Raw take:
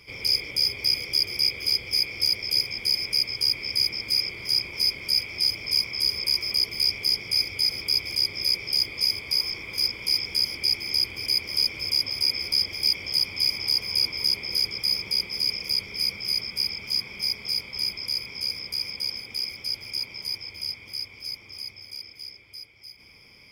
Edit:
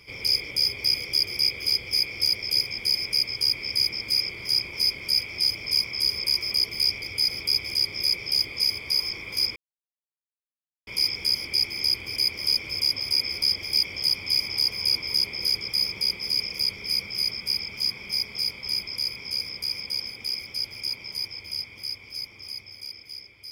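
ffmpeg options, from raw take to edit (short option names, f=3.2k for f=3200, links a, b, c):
-filter_complex "[0:a]asplit=3[a][b][c];[a]atrim=end=7.022[d];[b]atrim=start=7.428:end=9.97,asetpts=PTS-STARTPTS,afade=t=out:st=2.538:d=0.004:c=hsin,apad=pad_dur=1.31[e];[c]atrim=start=9.97,asetpts=PTS-STARTPTS,afade=t=in:d=0.004:c=hsin[f];[e][f]concat=n=2:v=0:a=1[g];[d][g]acrossfade=d=0.004:c1=hsin:c2=hsin"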